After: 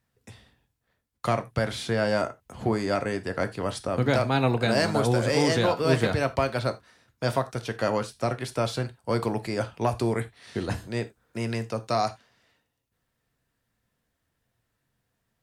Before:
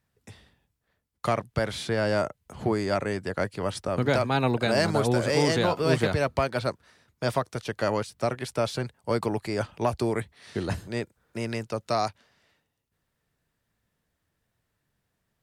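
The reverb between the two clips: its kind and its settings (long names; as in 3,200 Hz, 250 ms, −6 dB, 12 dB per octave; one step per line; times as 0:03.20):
reverb whose tail is shaped and stops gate 110 ms falling, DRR 9 dB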